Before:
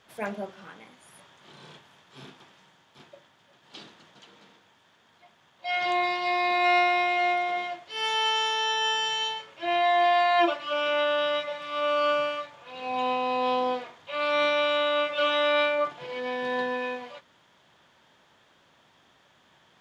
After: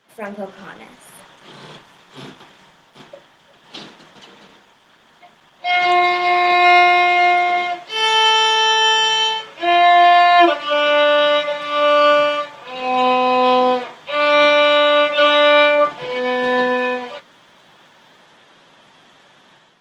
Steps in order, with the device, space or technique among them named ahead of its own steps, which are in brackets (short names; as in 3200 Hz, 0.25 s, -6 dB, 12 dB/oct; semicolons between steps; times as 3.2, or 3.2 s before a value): video call (HPF 130 Hz 24 dB/oct; AGC gain up to 9.5 dB; gain +2.5 dB; Opus 20 kbps 48000 Hz)